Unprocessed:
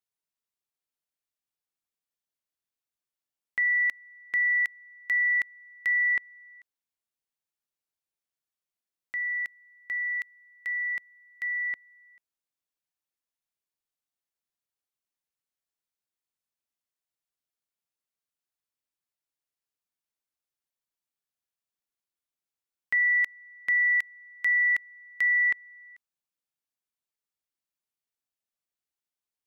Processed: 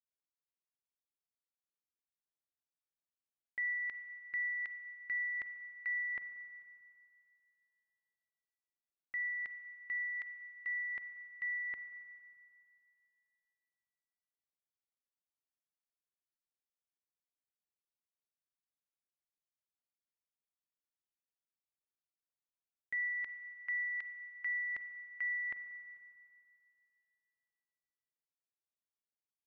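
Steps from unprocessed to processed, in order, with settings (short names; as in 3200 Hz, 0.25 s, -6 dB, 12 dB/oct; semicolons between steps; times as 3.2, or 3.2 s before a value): gate -45 dBFS, range -8 dB; high shelf 2600 Hz -9.5 dB; limiter -29 dBFS, peak gain reduction 6 dB; air absorption 180 m; spring tank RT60 2.4 s, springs 37/45 ms, chirp 60 ms, DRR 11 dB; gain -1.5 dB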